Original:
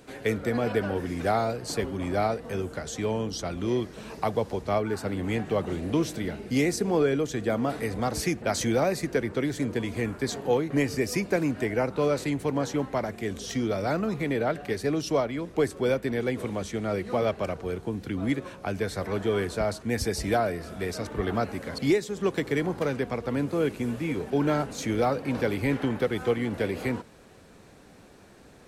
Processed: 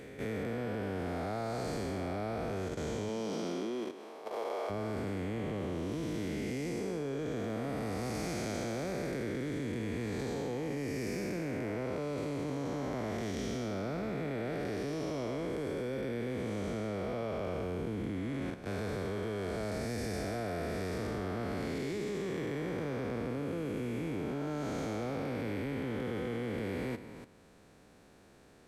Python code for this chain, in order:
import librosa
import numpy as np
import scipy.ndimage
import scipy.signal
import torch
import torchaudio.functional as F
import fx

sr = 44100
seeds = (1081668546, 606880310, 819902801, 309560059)

y = fx.spec_blur(x, sr, span_ms=434.0)
y = fx.highpass(y, sr, hz=fx.line((3.08, 140.0), (4.69, 450.0)), slope=24, at=(3.08, 4.69), fade=0.02)
y = fx.level_steps(y, sr, step_db=12)